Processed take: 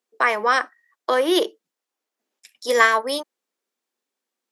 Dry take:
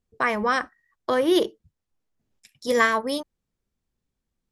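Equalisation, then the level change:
Bessel high-pass filter 460 Hz, order 8
+5.0 dB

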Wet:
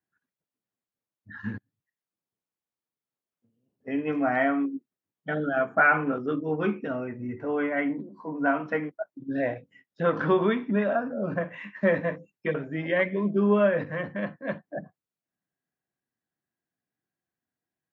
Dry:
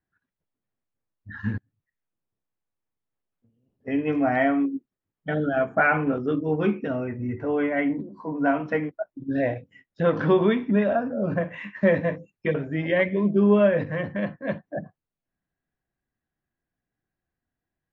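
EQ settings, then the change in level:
high-pass filter 140 Hz
dynamic equaliser 1,300 Hz, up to +6 dB, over −40 dBFS, Q 1.7
−3.5 dB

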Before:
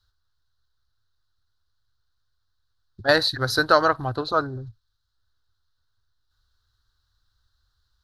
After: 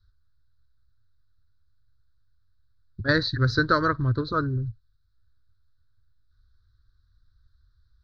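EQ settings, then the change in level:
Gaussian smoothing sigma 1.5 samples
low-shelf EQ 330 Hz +11.5 dB
phaser with its sweep stopped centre 2,800 Hz, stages 6
−2.0 dB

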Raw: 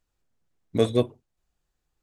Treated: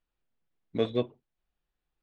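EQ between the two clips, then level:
transistor ladder low-pass 4,400 Hz, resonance 25%
parametric band 91 Hz −13 dB 0.4 octaves
0.0 dB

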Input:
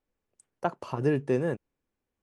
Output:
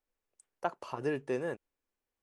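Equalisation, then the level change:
parametric band 130 Hz −11.5 dB 2.6 octaves
−2.5 dB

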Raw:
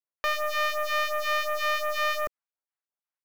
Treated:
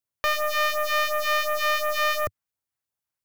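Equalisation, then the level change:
parametric band 98 Hz +14.5 dB 1.6 octaves
high-shelf EQ 6,100 Hz +5.5 dB
+2.5 dB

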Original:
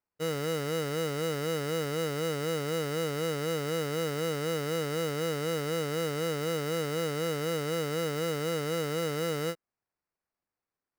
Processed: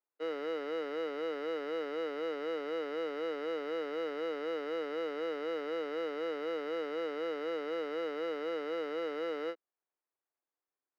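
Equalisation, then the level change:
Butterworth high-pass 280 Hz 36 dB per octave
high-frequency loss of the air 320 metres
−3.0 dB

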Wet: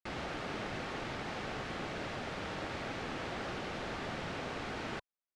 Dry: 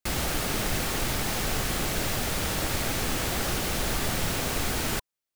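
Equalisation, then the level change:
head-to-tape spacing loss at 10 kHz 38 dB
spectral tilt +2 dB per octave
low-shelf EQ 64 Hz −11.5 dB
−3.5 dB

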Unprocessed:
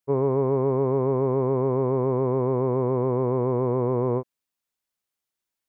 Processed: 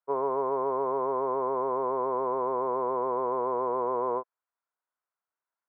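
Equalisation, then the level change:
loudspeaker in its box 450–2,000 Hz, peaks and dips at 470 Hz +3 dB, 680 Hz +6 dB, 1,000 Hz +9 dB, 1,400 Hz +9 dB
−5.0 dB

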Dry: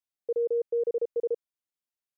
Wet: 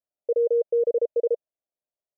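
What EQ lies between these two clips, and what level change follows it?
low-pass with resonance 620 Hz, resonance Q 5
−1.5 dB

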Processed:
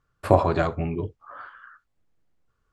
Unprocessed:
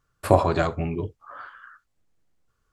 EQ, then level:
low-pass filter 3,300 Hz 6 dB per octave
0.0 dB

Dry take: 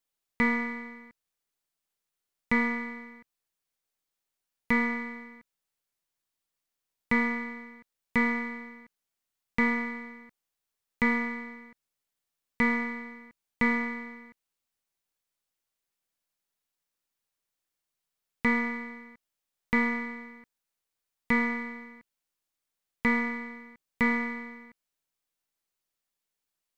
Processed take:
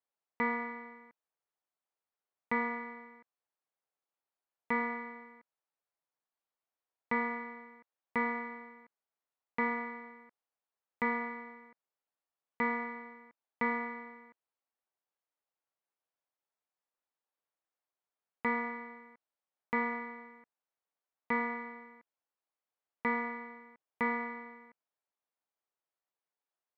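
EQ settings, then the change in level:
resonant band-pass 770 Hz, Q 1
0.0 dB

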